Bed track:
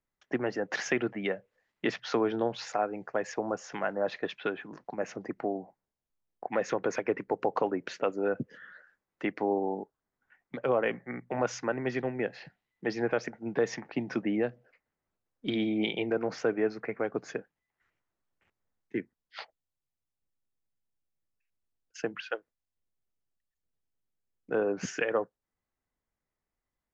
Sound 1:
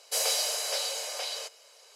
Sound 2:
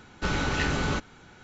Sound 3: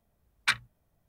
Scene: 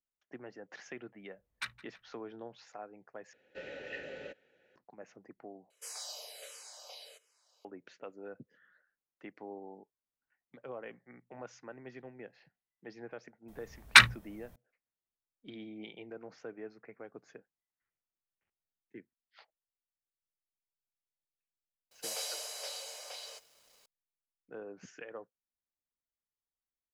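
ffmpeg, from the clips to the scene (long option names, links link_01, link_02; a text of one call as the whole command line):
ffmpeg -i bed.wav -i cue0.wav -i cue1.wav -i cue2.wav -filter_complex "[3:a]asplit=2[link_01][link_02];[1:a]asplit=2[link_03][link_04];[0:a]volume=-17dB[link_05];[link_01]asplit=2[link_06][link_07];[link_07]adelay=165,lowpass=frequency=3500:poles=1,volume=-19dB,asplit=2[link_08][link_09];[link_09]adelay=165,lowpass=frequency=3500:poles=1,volume=0.53,asplit=2[link_10][link_11];[link_11]adelay=165,lowpass=frequency=3500:poles=1,volume=0.53,asplit=2[link_12][link_13];[link_13]adelay=165,lowpass=frequency=3500:poles=1,volume=0.53[link_14];[link_06][link_08][link_10][link_12][link_14]amix=inputs=5:normalize=0[link_15];[2:a]asplit=3[link_16][link_17][link_18];[link_16]bandpass=frequency=530:width_type=q:width=8,volume=0dB[link_19];[link_17]bandpass=frequency=1840:width_type=q:width=8,volume=-6dB[link_20];[link_18]bandpass=frequency=2480:width_type=q:width=8,volume=-9dB[link_21];[link_19][link_20][link_21]amix=inputs=3:normalize=0[link_22];[link_03]asplit=2[link_23][link_24];[link_24]afreqshift=-1.4[link_25];[link_23][link_25]amix=inputs=2:normalize=1[link_26];[link_02]alimiter=level_in=16.5dB:limit=-1dB:release=50:level=0:latency=1[link_27];[link_04]acrusher=bits=8:mix=0:aa=0.000001[link_28];[link_05]asplit=3[link_29][link_30][link_31];[link_29]atrim=end=3.334[link_32];[link_22]atrim=end=1.43,asetpts=PTS-STARTPTS,volume=-3.5dB[link_33];[link_30]atrim=start=4.756:end=5.704[link_34];[link_26]atrim=end=1.95,asetpts=PTS-STARTPTS,volume=-14dB[link_35];[link_31]atrim=start=7.646[link_36];[link_15]atrim=end=1.08,asetpts=PTS-STARTPTS,volume=-13.5dB,afade=type=in:duration=0.004:curve=hsin,afade=type=out:start_time=1.076:duration=0.004:curve=hsin,adelay=1140[link_37];[link_27]atrim=end=1.08,asetpts=PTS-STARTPTS,volume=-2dB,afade=type=in:duration=0.004:curve=hsin,afade=type=out:start_time=1.076:duration=0.004:curve=hsin,adelay=594468S[link_38];[link_28]atrim=end=1.95,asetpts=PTS-STARTPTS,volume=-11dB,afade=type=in:duration=0.004:curve=hsin,afade=type=out:start_time=1.946:duration=0.004:curve=hsin,adelay=21910[link_39];[link_32][link_33]acrossfade=duration=0.004:curve1=hsin:curve2=hsin[link_40];[link_40][link_34]acrossfade=duration=0.004:curve1=hsin:curve2=hsin[link_41];[link_41][link_35]acrossfade=duration=0.004:curve1=hsin:curve2=hsin[link_42];[link_42][link_36]acrossfade=duration=0.004:curve1=hsin:curve2=hsin[link_43];[link_43][link_37][link_38][link_39]amix=inputs=4:normalize=0" out.wav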